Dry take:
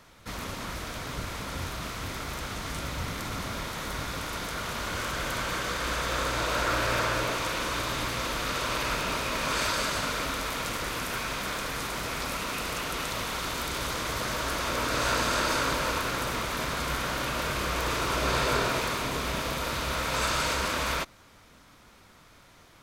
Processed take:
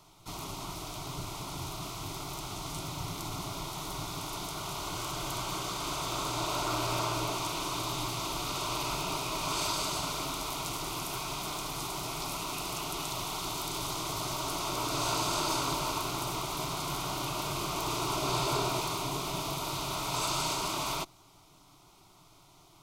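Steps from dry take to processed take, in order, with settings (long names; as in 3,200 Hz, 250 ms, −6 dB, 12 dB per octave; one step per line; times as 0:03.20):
phaser with its sweep stopped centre 340 Hz, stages 8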